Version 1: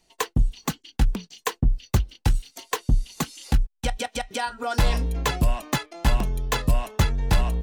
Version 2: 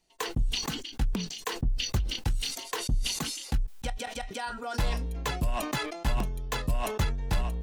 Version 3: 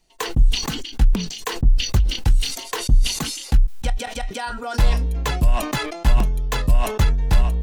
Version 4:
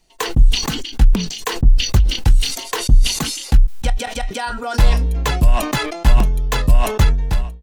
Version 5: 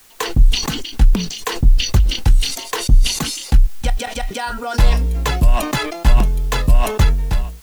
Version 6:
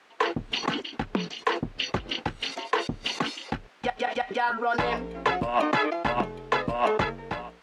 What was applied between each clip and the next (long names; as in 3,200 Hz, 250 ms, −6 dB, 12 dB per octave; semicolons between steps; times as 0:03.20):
level that may fall only so fast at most 54 dB per second; level −8 dB
low-shelf EQ 64 Hz +9 dB; level +6.5 dB
fade-out on the ending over 0.55 s; level +4 dB
bit-depth reduction 8 bits, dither triangular
band-pass filter 310–2,200 Hz